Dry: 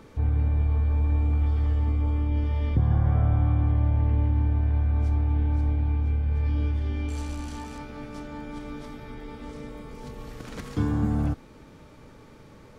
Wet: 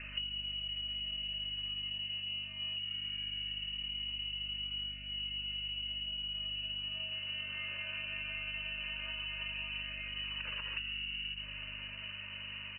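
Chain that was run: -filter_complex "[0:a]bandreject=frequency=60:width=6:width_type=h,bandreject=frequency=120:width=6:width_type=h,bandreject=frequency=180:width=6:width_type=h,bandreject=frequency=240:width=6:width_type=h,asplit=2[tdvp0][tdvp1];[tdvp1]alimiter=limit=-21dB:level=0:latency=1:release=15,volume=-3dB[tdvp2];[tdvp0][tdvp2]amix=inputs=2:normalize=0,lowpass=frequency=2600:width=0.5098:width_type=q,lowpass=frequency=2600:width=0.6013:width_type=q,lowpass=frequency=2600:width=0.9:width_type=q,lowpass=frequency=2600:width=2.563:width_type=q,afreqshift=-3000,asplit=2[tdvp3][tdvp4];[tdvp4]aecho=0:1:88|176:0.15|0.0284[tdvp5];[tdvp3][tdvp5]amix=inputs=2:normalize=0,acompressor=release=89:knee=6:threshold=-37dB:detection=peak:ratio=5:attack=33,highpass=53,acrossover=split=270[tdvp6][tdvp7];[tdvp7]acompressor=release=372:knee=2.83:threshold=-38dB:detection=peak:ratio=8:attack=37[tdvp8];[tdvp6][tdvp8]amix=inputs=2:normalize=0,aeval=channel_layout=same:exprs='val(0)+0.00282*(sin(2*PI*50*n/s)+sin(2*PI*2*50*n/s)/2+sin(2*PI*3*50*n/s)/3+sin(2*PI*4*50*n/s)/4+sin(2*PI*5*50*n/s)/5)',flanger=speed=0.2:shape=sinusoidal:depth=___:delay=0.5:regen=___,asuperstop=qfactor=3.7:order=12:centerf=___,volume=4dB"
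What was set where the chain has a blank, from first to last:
9.9, -59, 750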